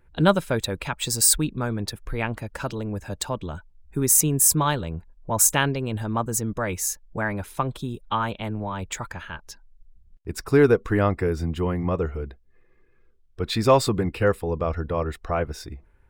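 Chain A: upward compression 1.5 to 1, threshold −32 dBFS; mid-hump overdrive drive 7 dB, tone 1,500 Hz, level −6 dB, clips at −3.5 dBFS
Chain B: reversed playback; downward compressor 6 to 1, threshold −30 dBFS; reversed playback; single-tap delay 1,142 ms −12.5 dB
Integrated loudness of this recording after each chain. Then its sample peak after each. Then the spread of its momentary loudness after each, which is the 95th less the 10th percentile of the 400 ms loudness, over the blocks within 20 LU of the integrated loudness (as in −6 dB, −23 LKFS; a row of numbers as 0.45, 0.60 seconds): −27.0, −34.5 LKFS; −6.5, −16.5 dBFS; 16, 10 LU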